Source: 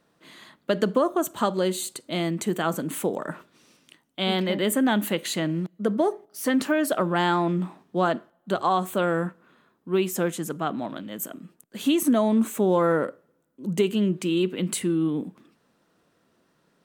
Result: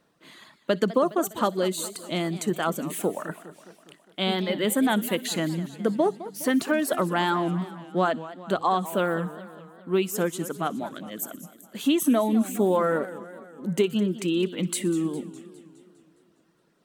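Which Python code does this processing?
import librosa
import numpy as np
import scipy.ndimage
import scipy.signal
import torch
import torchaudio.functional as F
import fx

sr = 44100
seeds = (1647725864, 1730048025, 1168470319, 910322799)

y = fx.dereverb_blind(x, sr, rt60_s=0.78)
y = fx.echo_wet_highpass(y, sr, ms=61, feedback_pct=69, hz=3600.0, wet_db=-18.0)
y = fx.echo_warbled(y, sr, ms=205, feedback_pct=58, rate_hz=2.8, cents=213, wet_db=-15.5)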